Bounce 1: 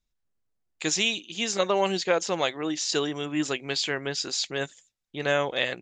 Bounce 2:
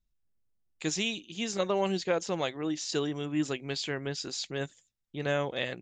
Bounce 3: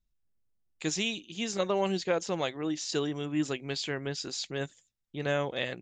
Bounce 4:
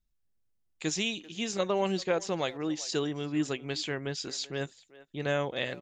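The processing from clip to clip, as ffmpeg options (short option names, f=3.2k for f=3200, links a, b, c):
-af "lowshelf=f=320:g=10.5,volume=-7.5dB"
-af anull
-filter_complex "[0:a]asplit=2[a][b];[b]adelay=390,highpass=300,lowpass=3.4k,asoftclip=type=hard:threshold=-24.5dB,volume=-18dB[c];[a][c]amix=inputs=2:normalize=0"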